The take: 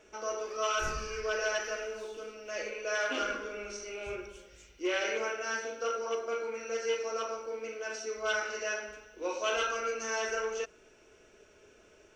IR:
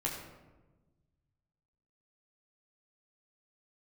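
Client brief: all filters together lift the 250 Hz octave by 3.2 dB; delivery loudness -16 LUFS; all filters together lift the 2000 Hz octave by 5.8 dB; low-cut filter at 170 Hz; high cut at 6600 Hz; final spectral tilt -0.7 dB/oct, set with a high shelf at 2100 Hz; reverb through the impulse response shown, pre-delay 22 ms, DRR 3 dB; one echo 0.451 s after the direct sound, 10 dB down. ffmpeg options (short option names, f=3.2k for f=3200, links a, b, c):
-filter_complex "[0:a]highpass=170,lowpass=6.6k,equalizer=f=250:t=o:g=5.5,equalizer=f=2k:t=o:g=6,highshelf=f=2.1k:g=4,aecho=1:1:451:0.316,asplit=2[a][b];[1:a]atrim=start_sample=2205,adelay=22[c];[b][c]afir=irnorm=-1:irlink=0,volume=-6.5dB[d];[a][d]amix=inputs=2:normalize=0,volume=12.5dB"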